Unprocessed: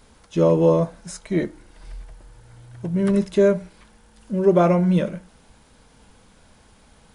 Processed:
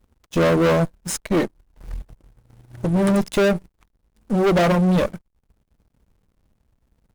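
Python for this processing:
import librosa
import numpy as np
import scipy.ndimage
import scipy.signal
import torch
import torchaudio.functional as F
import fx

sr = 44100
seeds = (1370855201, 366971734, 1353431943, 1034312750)

y = fx.dereverb_blind(x, sr, rt60_s=0.57)
y = fx.backlash(y, sr, play_db=-43.5)
y = fx.leveller(y, sr, passes=2)
y = fx.high_shelf(y, sr, hz=8500.0, db=10.5)
y = fx.tube_stage(y, sr, drive_db=18.0, bias=0.75)
y = F.gain(torch.from_numpy(y), 3.5).numpy()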